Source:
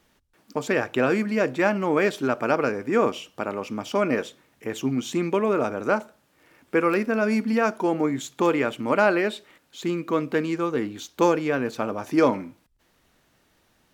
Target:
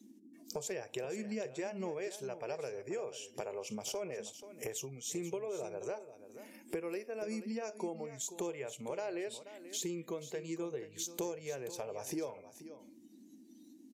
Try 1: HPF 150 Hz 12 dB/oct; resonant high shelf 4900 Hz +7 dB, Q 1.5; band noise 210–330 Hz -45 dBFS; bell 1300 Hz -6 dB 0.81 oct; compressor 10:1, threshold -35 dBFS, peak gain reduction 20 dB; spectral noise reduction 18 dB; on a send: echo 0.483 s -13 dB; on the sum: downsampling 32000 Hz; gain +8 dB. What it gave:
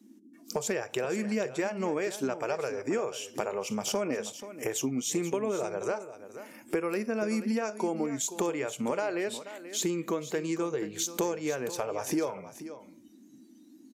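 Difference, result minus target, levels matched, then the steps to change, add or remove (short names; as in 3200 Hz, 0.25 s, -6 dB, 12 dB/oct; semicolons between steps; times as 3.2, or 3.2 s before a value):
compressor: peak gain reduction -7 dB; 1000 Hz band +2.5 dB
change: bell 1300 Hz -16.5 dB 0.81 oct; change: compressor 10:1, threshold -44 dBFS, peak gain reduction 27 dB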